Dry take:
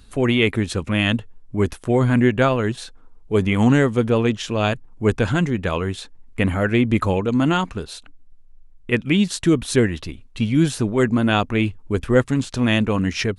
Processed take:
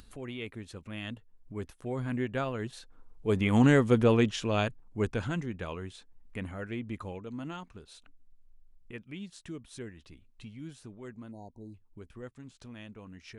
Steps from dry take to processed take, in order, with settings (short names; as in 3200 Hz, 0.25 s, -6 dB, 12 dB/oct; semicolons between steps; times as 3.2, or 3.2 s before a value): Doppler pass-by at 3.99, 6 m/s, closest 3 m; spectral delete 11.31–11.74, 970–3800 Hz; upward compressor, threshold -37 dBFS; gain -4.5 dB